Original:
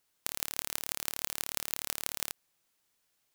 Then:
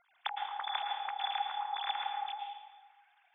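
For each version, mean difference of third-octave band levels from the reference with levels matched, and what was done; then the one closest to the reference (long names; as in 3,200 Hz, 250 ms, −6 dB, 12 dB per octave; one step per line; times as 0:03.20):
23.5 dB: three sine waves on the formant tracks
high-frequency loss of the air 95 metres
notch filter 2,900 Hz, Q 14
dense smooth reverb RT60 1.3 s, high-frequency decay 0.75×, pre-delay 100 ms, DRR 2 dB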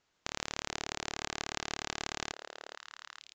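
11.5 dB: brickwall limiter −5.5 dBFS, peak gain reduction 3 dB
high-shelf EQ 3,400 Hz −8.5 dB
on a send: echo through a band-pass that steps 437 ms, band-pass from 530 Hz, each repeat 1.4 octaves, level −3.5 dB
on the sum: downsampling to 16,000 Hz
level +6.5 dB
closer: second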